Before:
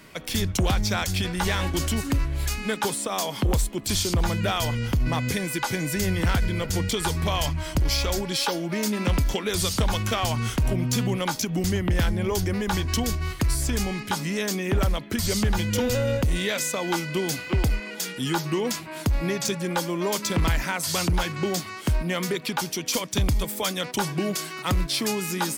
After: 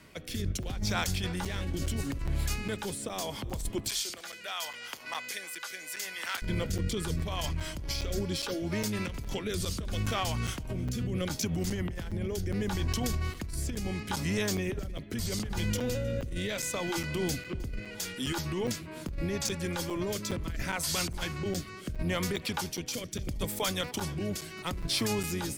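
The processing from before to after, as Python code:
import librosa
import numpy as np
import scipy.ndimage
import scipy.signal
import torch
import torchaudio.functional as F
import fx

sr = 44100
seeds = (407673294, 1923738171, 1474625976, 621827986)

y = fx.octave_divider(x, sr, octaves=1, level_db=-4.0)
y = fx.highpass(y, sr, hz=980.0, slope=12, at=(3.89, 6.42))
y = fx.over_compress(y, sr, threshold_db=-25.0, ratio=-1.0)
y = fx.rotary(y, sr, hz=0.75)
y = y + 10.0 ** (-23.0 / 20.0) * np.pad(y, (int(311 * sr / 1000.0), 0))[:len(y)]
y = fx.buffer_crackle(y, sr, first_s=0.63, period_s=0.41, block=256, kind='zero')
y = y * librosa.db_to_amplitude(-5.0)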